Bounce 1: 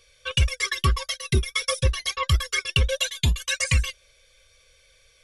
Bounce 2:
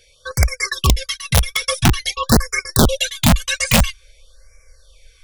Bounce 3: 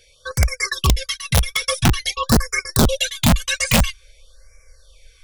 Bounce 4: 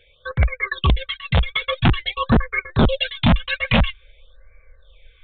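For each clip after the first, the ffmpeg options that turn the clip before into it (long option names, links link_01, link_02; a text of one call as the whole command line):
ffmpeg -i in.wav -af "asubboost=boost=6:cutoff=61,aeval=exprs='(mod(3.35*val(0)+1,2)-1)/3.35':channel_layout=same,afftfilt=real='re*(1-between(b*sr/1024,260*pow(3500/260,0.5+0.5*sin(2*PI*0.49*pts/sr))/1.41,260*pow(3500/260,0.5+0.5*sin(2*PI*0.49*pts/sr))*1.41))':imag='im*(1-between(b*sr/1024,260*pow(3500/260,0.5+0.5*sin(2*PI*0.49*pts/sr))/1.41,260*pow(3500/260,0.5+0.5*sin(2*PI*0.49*pts/sr))*1.41))':win_size=1024:overlap=0.75,volume=5dB" out.wav
ffmpeg -i in.wav -af "acontrast=27,volume=-5.5dB" out.wav
ffmpeg -i in.wav -af "aresample=8000,aresample=44100" out.wav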